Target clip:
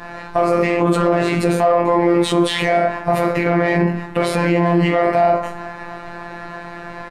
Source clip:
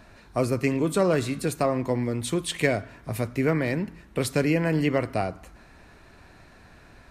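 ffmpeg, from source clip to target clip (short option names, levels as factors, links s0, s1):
-filter_complex "[0:a]asplit=2[s0][s1];[s1]adynamicsmooth=sensitivity=4:basefreq=2100,volume=0.794[s2];[s0][s2]amix=inputs=2:normalize=0,asplit=2[s3][s4];[s4]adelay=19,volume=0.75[s5];[s3][s5]amix=inputs=2:normalize=0,asplit=2[s6][s7];[s7]aecho=0:1:20|42|66.2|92.82|122.1:0.631|0.398|0.251|0.158|0.1[s8];[s6][s8]amix=inputs=2:normalize=0,acompressor=threshold=0.126:ratio=6,asplit=2[s9][s10];[s10]highpass=f=720:p=1,volume=6.31,asoftclip=type=tanh:threshold=0.376[s11];[s9][s11]amix=inputs=2:normalize=0,lowpass=f=1400:p=1,volume=0.501,afftfilt=real='hypot(re,im)*cos(PI*b)':imag='0':win_size=1024:overlap=0.75,adynamicequalizer=threshold=0.00891:dfrequency=740:dqfactor=2.1:tfrequency=740:tqfactor=2.1:attack=5:release=100:ratio=0.375:range=2.5:mode=boostabove:tftype=bell,aresample=32000,aresample=44100,alimiter=level_in=5.01:limit=0.891:release=50:level=0:latency=1,volume=0.708"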